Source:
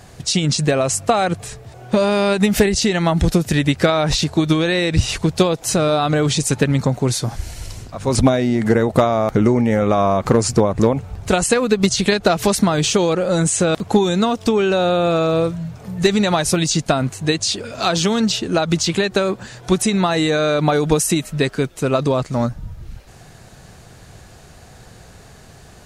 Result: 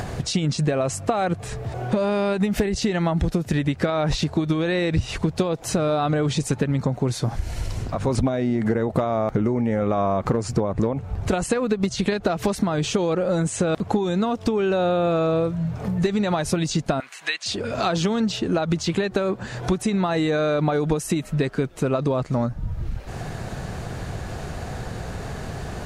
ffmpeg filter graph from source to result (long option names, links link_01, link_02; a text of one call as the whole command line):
ffmpeg -i in.wav -filter_complex "[0:a]asettb=1/sr,asplit=3[link_01][link_02][link_03];[link_01]atrim=end=17.004[link_04];[link_02]atrim=start=17:end=17.46,asetpts=PTS-STARTPTS,afade=type=in:duration=0.004:curve=qsin,afade=type=out:start_time=0.456:duration=0.004:curve=qsin,highpass=1500,acrossover=split=4500[link_05][link_06];[link_06]acompressor=threshold=-36dB:ratio=4:attack=1:release=60[link_07];[link_05][link_07]amix=inputs=2:normalize=0,equalizer=frequency=2300:width=0.83:gain=5.5[link_08];[link_03]atrim=start=17.456[link_09];[link_04][link_08]acrossfade=duration=0.004:curve1=hsin:curve2=qsin[link_10];[link_10][link_09]acrossfade=duration=0.004:curve1=qsin:curve2=hsin,acompressor=mode=upward:threshold=-18dB:ratio=2.5,highshelf=frequency=3100:gain=-11,acompressor=threshold=-18dB:ratio=6" out.wav